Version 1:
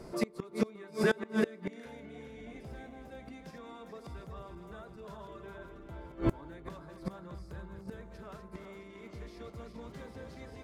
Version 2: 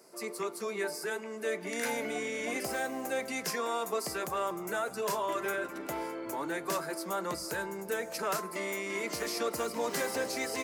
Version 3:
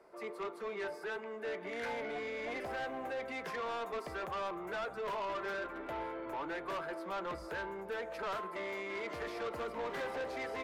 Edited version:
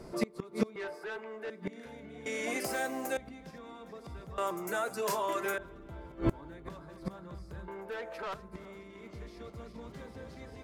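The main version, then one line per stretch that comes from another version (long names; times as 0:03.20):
1
0:00.76–0:01.50: punch in from 3
0:02.26–0:03.17: punch in from 2
0:04.38–0:05.58: punch in from 2
0:07.68–0:08.34: punch in from 3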